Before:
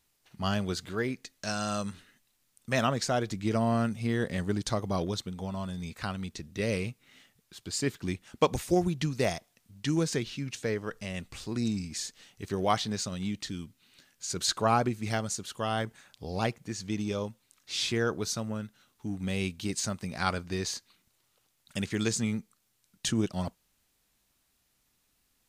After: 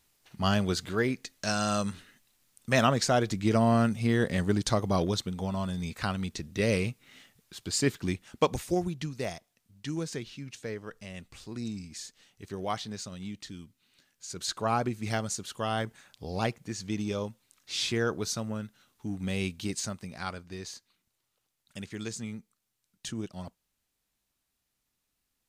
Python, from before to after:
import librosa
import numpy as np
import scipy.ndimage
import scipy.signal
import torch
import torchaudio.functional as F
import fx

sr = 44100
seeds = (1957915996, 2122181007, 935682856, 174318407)

y = fx.gain(x, sr, db=fx.line((7.9, 3.5), (9.18, -6.0), (14.34, -6.0), (15.09, 0.0), (19.64, 0.0), (20.35, -8.0)))